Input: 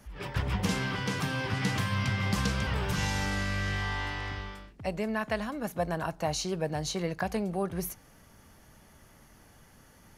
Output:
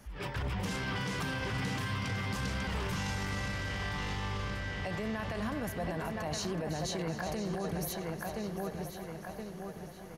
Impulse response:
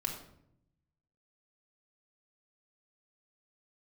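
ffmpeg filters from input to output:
-filter_complex "[0:a]asplit=2[link_01][link_02];[link_02]adelay=1021,lowpass=frequency=4600:poles=1,volume=-7dB,asplit=2[link_03][link_04];[link_04]adelay=1021,lowpass=frequency=4600:poles=1,volume=0.49,asplit=2[link_05][link_06];[link_06]adelay=1021,lowpass=frequency=4600:poles=1,volume=0.49,asplit=2[link_07][link_08];[link_08]adelay=1021,lowpass=frequency=4600:poles=1,volume=0.49,asplit=2[link_09][link_10];[link_10]adelay=1021,lowpass=frequency=4600:poles=1,volume=0.49,asplit=2[link_11][link_12];[link_12]adelay=1021,lowpass=frequency=4600:poles=1,volume=0.49[link_13];[link_03][link_05][link_07][link_09][link_11][link_13]amix=inputs=6:normalize=0[link_14];[link_01][link_14]amix=inputs=2:normalize=0,alimiter=level_in=3.5dB:limit=-24dB:level=0:latency=1:release=17,volume=-3.5dB,asplit=2[link_15][link_16];[link_16]aecho=0:1:373|746|1119|1492|1865|2238:0.316|0.177|0.0992|0.0555|0.0311|0.0174[link_17];[link_15][link_17]amix=inputs=2:normalize=0"

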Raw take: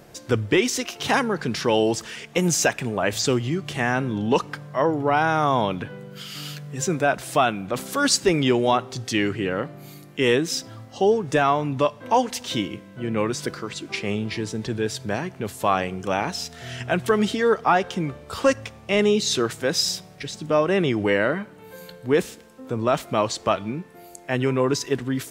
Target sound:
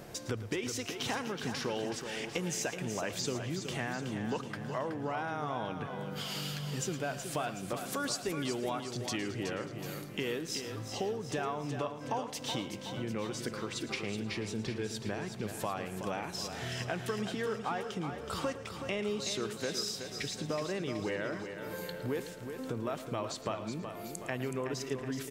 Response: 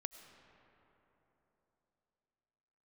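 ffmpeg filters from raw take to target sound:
-filter_complex "[0:a]acompressor=threshold=-36dB:ratio=4,aecho=1:1:373|746|1119|1492|1865|2238:0.398|0.211|0.112|0.0593|0.0314|0.0166,asplit=2[link_01][link_02];[1:a]atrim=start_sample=2205,adelay=111[link_03];[link_02][link_03]afir=irnorm=-1:irlink=0,volume=-11dB[link_04];[link_01][link_04]amix=inputs=2:normalize=0"

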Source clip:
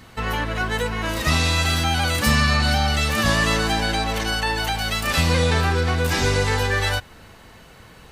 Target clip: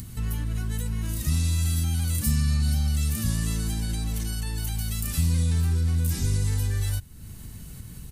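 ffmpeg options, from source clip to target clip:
ffmpeg -i in.wav -filter_complex "[0:a]asplit=2[link_01][link_02];[link_02]alimiter=limit=-17dB:level=0:latency=1,volume=2dB[link_03];[link_01][link_03]amix=inputs=2:normalize=0,firequalizer=gain_entry='entry(120,0);entry(510,-23);entry(720,-24);entry(9300,2)':delay=0.05:min_phase=1,acompressor=mode=upward:threshold=-25dB:ratio=2.5,volume=-5dB" out.wav

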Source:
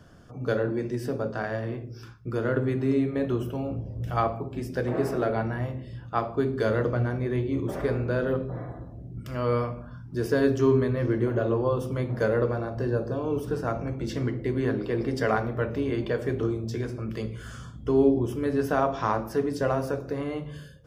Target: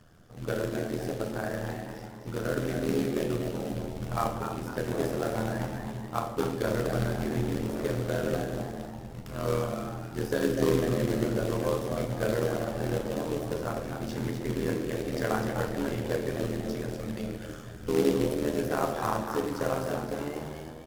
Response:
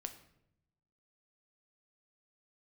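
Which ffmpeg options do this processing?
-filter_complex "[0:a]asplit=6[link_01][link_02][link_03][link_04][link_05][link_06];[link_02]adelay=250,afreqshift=95,volume=-7dB[link_07];[link_03]adelay=500,afreqshift=190,volume=-14.5dB[link_08];[link_04]adelay=750,afreqshift=285,volume=-22.1dB[link_09];[link_05]adelay=1000,afreqshift=380,volume=-29.6dB[link_10];[link_06]adelay=1250,afreqshift=475,volume=-37.1dB[link_11];[link_01][link_07][link_08][link_09][link_10][link_11]amix=inputs=6:normalize=0,acrusher=bits=3:mode=log:mix=0:aa=0.000001,tremolo=f=80:d=0.857[link_12];[1:a]atrim=start_sample=2205,asetrate=30429,aresample=44100[link_13];[link_12][link_13]afir=irnorm=-1:irlink=0"

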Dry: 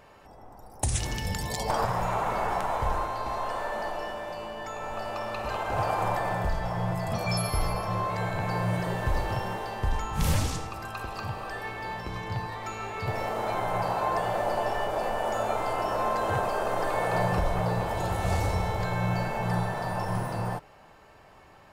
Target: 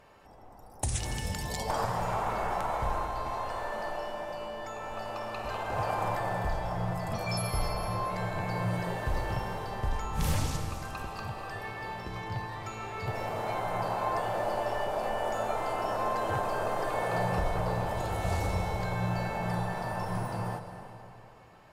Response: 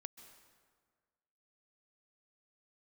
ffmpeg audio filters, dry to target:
-filter_complex "[1:a]atrim=start_sample=2205,asetrate=29106,aresample=44100[link_01];[0:a][link_01]afir=irnorm=-1:irlink=0"

